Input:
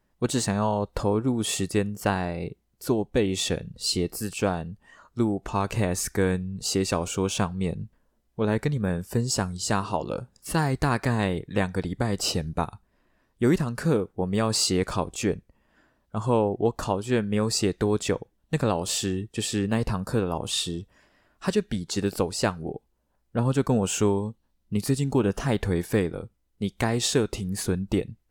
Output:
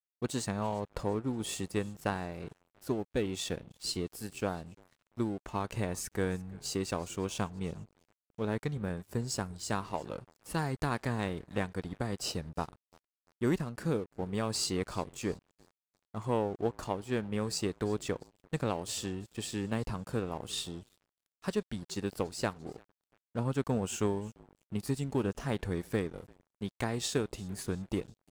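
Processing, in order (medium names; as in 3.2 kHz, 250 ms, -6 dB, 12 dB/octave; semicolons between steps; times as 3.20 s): frequency-shifting echo 343 ms, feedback 56%, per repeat -43 Hz, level -22 dB; Chebyshev shaper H 3 -22 dB, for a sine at -10 dBFS; crossover distortion -45 dBFS; trim -6.5 dB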